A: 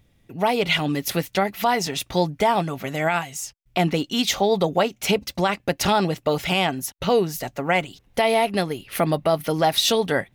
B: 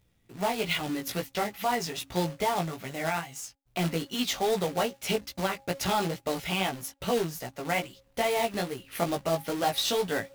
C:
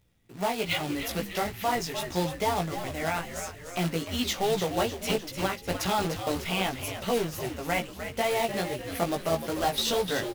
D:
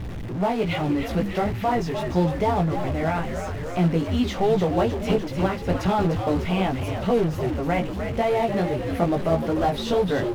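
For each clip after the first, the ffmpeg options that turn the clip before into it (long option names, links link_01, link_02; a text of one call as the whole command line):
ffmpeg -i in.wav -af "bandreject=frequency=272.4:width_type=h:width=4,bandreject=frequency=544.8:width_type=h:width=4,bandreject=frequency=817.2:width_type=h:width=4,acrusher=bits=2:mode=log:mix=0:aa=0.000001,flanger=delay=15.5:depth=2.9:speed=2.4,volume=-5.5dB" out.wav
ffmpeg -i in.wav -filter_complex "[0:a]asplit=8[link_01][link_02][link_03][link_04][link_05][link_06][link_07][link_08];[link_02]adelay=300,afreqshift=-88,volume=-9dB[link_09];[link_03]adelay=600,afreqshift=-176,volume=-14dB[link_10];[link_04]adelay=900,afreqshift=-264,volume=-19.1dB[link_11];[link_05]adelay=1200,afreqshift=-352,volume=-24.1dB[link_12];[link_06]adelay=1500,afreqshift=-440,volume=-29.1dB[link_13];[link_07]adelay=1800,afreqshift=-528,volume=-34.2dB[link_14];[link_08]adelay=2100,afreqshift=-616,volume=-39.2dB[link_15];[link_01][link_09][link_10][link_11][link_12][link_13][link_14][link_15]amix=inputs=8:normalize=0" out.wav
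ffmpeg -i in.wav -af "aeval=exprs='val(0)+0.5*0.0237*sgn(val(0))':channel_layout=same,lowpass=frequency=1100:poles=1,lowshelf=frequency=290:gain=5,volume=4dB" out.wav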